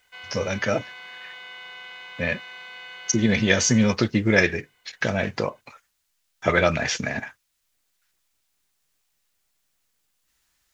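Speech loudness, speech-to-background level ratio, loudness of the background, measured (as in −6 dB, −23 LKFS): −23.0 LKFS, 16.0 dB, −39.0 LKFS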